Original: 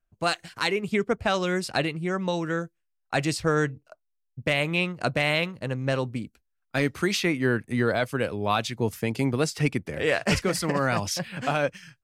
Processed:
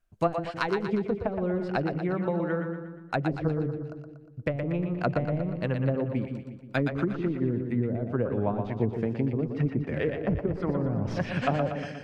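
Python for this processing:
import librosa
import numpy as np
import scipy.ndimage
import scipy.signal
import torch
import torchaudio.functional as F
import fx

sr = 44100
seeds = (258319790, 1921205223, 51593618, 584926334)

y = fx.tracing_dist(x, sr, depth_ms=0.026)
y = fx.env_lowpass_down(y, sr, base_hz=310.0, full_db=-20.0)
y = fx.rider(y, sr, range_db=10, speed_s=0.5)
y = fx.echo_split(y, sr, split_hz=430.0, low_ms=161, high_ms=119, feedback_pct=52, wet_db=-6)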